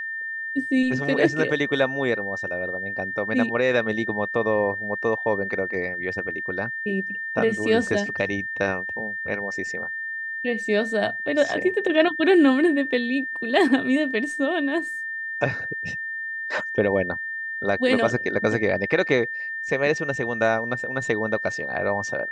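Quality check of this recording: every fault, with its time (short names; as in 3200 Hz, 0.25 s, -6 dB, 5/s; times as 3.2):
tone 1800 Hz -28 dBFS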